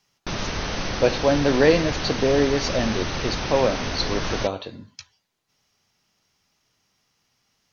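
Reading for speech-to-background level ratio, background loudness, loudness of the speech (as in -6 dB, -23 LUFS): 5.0 dB, -28.0 LUFS, -23.0 LUFS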